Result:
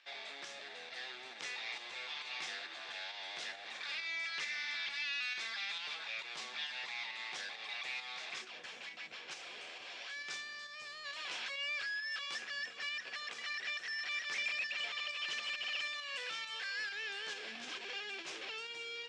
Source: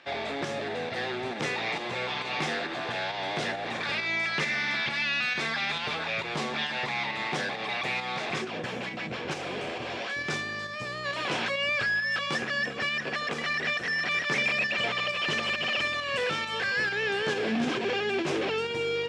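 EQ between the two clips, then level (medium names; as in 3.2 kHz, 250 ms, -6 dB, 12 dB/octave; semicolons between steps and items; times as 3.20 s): band-pass filter 6.9 kHz, Q 0.89; treble shelf 6 kHz -12 dB; 0.0 dB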